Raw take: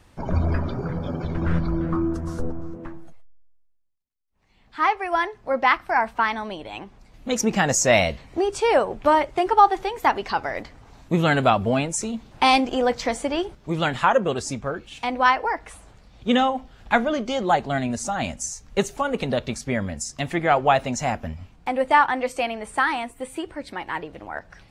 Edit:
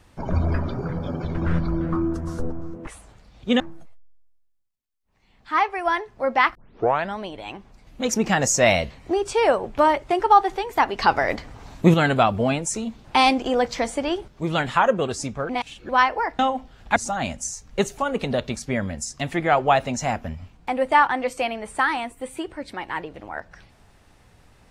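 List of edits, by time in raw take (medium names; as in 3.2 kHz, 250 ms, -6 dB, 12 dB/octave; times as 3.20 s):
5.82 s: tape start 0.61 s
10.26–11.21 s: gain +6.5 dB
14.76–15.16 s: reverse
15.66–16.39 s: move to 2.87 s
16.96–17.95 s: delete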